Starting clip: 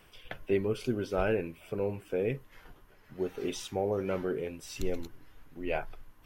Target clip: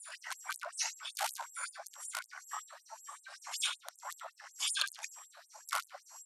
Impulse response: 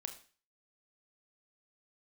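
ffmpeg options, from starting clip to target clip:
-filter_complex "[0:a]afftfilt=real='re*pow(10,23/40*sin(2*PI*(0.72*log(max(b,1)*sr/1024/100)/log(2)-(1.9)*(pts-256)/sr)))':imag='im*pow(10,23/40*sin(2*PI*(0.72*log(max(b,1)*sr/1024/100)/log(2)-(1.9)*(pts-256)/sr)))':win_size=1024:overlap=0.75,afftfilt=real='re*lt(hypot(re,im),0.631)':imag='im*lt(hypot(re,im),0.631)':win_size=1024:overlap=0.75,equalizer=f=500:t=o:w=1:g=-3,equalizer=f=2k:t=o:w=1:g=6,equalizer=f=4k:t=o:w=1:g=-9,asplit=2[a][b];[b]aeval=exprs='(mod(10*val(0)+1,2)-1)/10':c=same,volume=-7.5dB[c];[a][c]amix=inputs=2:normalize=0,acompressor=threshold=-33dB:ratio=3,asplit=3[d][e][f];[e]asetrate=33038,aresample=44100,atempo=1.33484,volume=-5dB[g];[f]asetrate=66075,aresample=44100,atempo=0.66742,volume=-11dB[h];[d][g][h]amix=inputs=3:normalize=0,highshelf=f=4.7k:g=11.5,asetrate=26222,aresample=44100,atempo=1.68179,asplit=2[i][j];[j]adelay=72,lowpass=f=3.6k:p=1,volume=-6dB,asplit=2[k][l];[l]adelay=72,lowpass=f=3.6k:p=1,volume=0.26,asplit=2[m][n];[n]adelay=72,lowpass=f=3.6k:p=1,volume=0.26[o];[i][k][m][o]amix=inputs=4:normalize=0,afftfilt=real='re*gte(b*sr/1024,530*pow(7700/530,0.5+0.5*sin(2*PI*5.3*pts/sr)))':imag='im*gte(b*sr/1024,530*pow(7700/530,0.5+0.5*sin(2*PI*5.3*pts/sr)))':win_size=1024:overlap=0.75,volume=1dB"

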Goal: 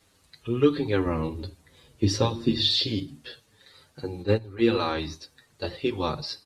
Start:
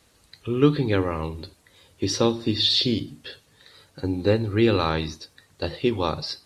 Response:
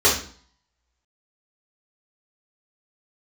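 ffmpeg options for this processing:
-filter_complex "[0:a]asettb=1/sr,asplit=3[a][b][c];[a]atrim=end=1.064[d];[b]atrim=start=1.06:end=2.71,asetpts=PTS-STARTPTS,afade=t=in:d=0.004:c=qsin,afade=t=out:st=1.646:d=0.004:c=qsin,lowshelf=f=380:g=8.5[e];[c]atrim=start=2.706[f];[d][e]acrossfade=d=0.004:c1=hsin:c2=qsin[g];[g][f]acrossfade=d=0.004:c1=qsin:c2=hsin,asplit=3[h][i][j];[h]afade=t=out:st=4.22:d=0.02[k];[i]agate=range=-10dB:threshold=-19dB:ratio=16:detection=peak,afade=t=in:st=4.22:d=0.02,afade=t=out:st=4.68:d=0.02[l];[j]afade=t=in:st=4.68:d=0.02[m];[k][l][m]amix=inputs=3:normalize=0,asplit=2[n][o];[o]adelay=6.9,afreqshift=-1.4[p];[n][p]amix=inputs=2:normalize=1"

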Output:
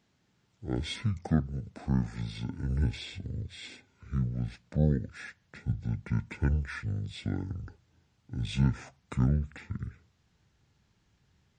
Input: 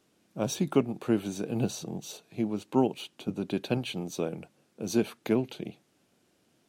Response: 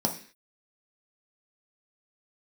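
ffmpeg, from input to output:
-af "asubboost=boost=4:cutoff=200,asetrate=25442,aresample=44100,volume=-3dB"

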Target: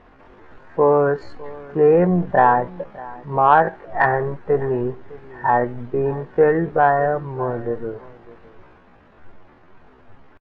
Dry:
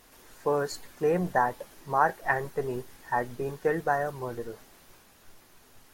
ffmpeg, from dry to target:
-filter_complex "[0:a]aemphasis=mode=reproduction:type=75kf,atempo=0.57,lowpass=2k,asplit=2[a][b];[b]aecho=0:1:605:0.0891[c];[a][c]amix=inputs=2:normalize=0,acontrast=83,volume=4dB"

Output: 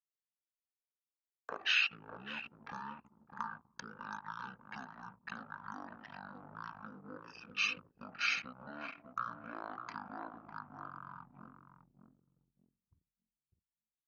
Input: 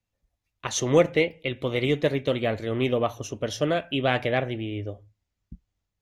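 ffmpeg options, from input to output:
-filter_complex "[0:a]asetrate=18846,aresample=44100,highshelf=f=3.9k:g=5.5,acompressor=threshold=-34dB:ratio=16,asplit=2[a][b];[b]adelay=603,lowpass=f=1.2k:p=1,volume=-6dB,asplit=2[c][d];[d]adelay=603,lowpass=f=1.2k:p=1,volume=0.39,asplit=2[e][f];[f]adelay=603,lowpass=f=1.2k:p=1,volume=0.39,asplit=2[g][h];[h]adelay=603,lowpass=f=1.2k:p=1,volume=0.39,asplit=2[i][j];[j]adelay=603,lowpass=f=1.2k:p=1,volume=0.39[k];[a][c][e][g][i][k]amix=inputs=6:normalize=0,anlmdn=0.0398,highpass=f=150:p=1,aderivative,volume=16.5dB"

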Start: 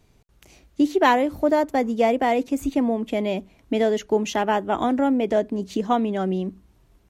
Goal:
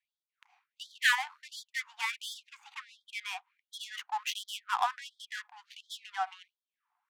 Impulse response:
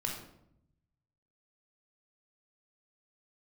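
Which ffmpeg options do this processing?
-af "bandreject=f=50:t=h:w=6,bandreject=f=100:t=h:w=6,bandreject=f=150:t=h:w=6,bandreject=f=200:t=h:w=6,adynamicsmooth=sensitivity=5.5:basefreq=1k,afftfilt=real='re*gte(b*sr/1024,700*pow(3200/700,0.5+0.5*sin(2*PI*1.4*pts/sr)))':imag='im*gte(b*sr/1024,700*pow(3200/700,0.5+0.5*sin(2*PI*1.4*pts/sr)))':win_size=1024:overlap=0.75"

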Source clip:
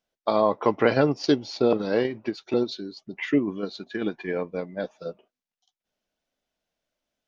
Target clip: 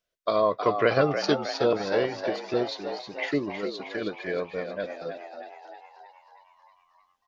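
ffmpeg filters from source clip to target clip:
-filter_complex "[0:a]asuperstop=centerf=830:order=4:qfactor=3.7,equalizer=f=240:t=o:w=0.97:g=-8.5,asplit=9[a][b][c][d][e][f][g][h][i];[b]adelay=315,afreqshift=77,volume=-8dB[j];[c]adelay=630,afreqshift=154,volume=-12.3dB[k];[d]adelay=945,afreqshift=231,volume=-16.6dB[l];[e]adelay=1260,afreqshift=308,volume=-20.9dB[m];[f]adelay=1575,afreqshift=385,volume=-25.2dB[n];[g]adelay=1890,afreqshift=462,volume=-29.5dB[o];[h]adelay=2205,afreqshift=539,volume=-33.8dB[p];[i]adelay=2520,afreqshift=616,volume=-38.1dB[q];[a][j][k][l][m][n][o][p][q]amix=inputs=9:normalize=0"

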